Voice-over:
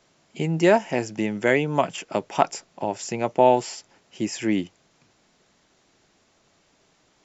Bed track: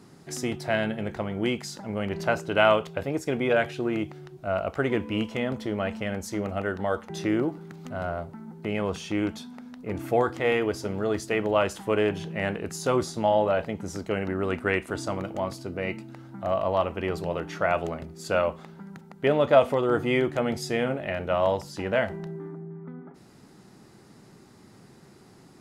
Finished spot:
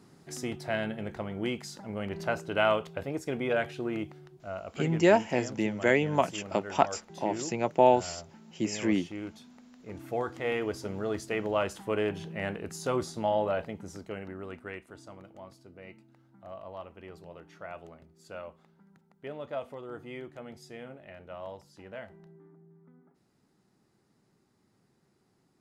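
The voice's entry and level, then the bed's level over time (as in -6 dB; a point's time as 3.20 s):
4.40 s, -4.0 dB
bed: 4.04 s -5.5 dB
4.64 s -12 dB
9.73 s -12 dB
10.70 s -5.5 dB
13.53 s -5.5 dB
14.96 s -18 dB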